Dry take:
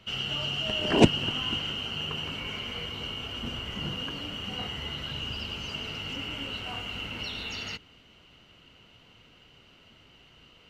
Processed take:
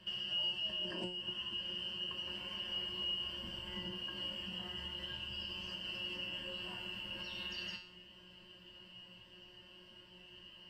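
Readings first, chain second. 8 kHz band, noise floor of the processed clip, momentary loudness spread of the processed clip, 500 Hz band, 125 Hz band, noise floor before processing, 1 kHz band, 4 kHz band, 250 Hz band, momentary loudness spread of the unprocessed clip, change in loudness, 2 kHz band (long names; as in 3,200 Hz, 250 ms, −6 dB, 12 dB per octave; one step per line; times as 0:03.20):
−16.5 dB, −59 dBFS, 19 LU, −17.5 dB, −18.0 dB, −57 dBFS, −16.0 dB, −6.5 dB, −18.0 dB, 9 LU, −9.0 dB, −10.5 dB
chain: EQ curve with evenly spaced ripples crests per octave 1.3, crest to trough 13 dB
downward compressor 16 to 1, threshold −34 dBFS, peak gain reduction 25.5 dB
tuned comb filter 180 Hz, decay 0.49 s, harmonics all, mix 90%
level +7.5 dB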